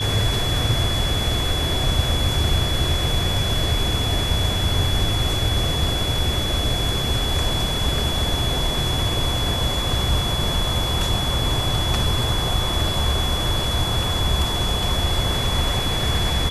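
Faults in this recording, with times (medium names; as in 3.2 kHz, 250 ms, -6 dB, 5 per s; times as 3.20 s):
whine 3.4 kHz -25 dBFS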